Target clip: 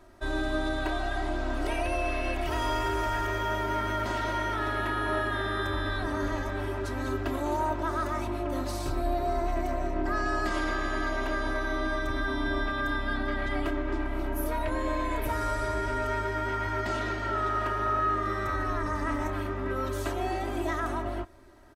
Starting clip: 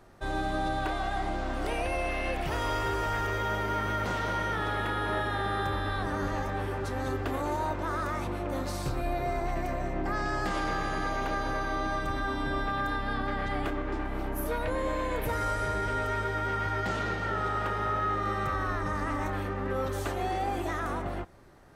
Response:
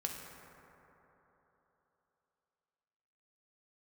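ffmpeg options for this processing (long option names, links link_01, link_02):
-af "aecho=1:1:3.1:0.93,volume=-2dB"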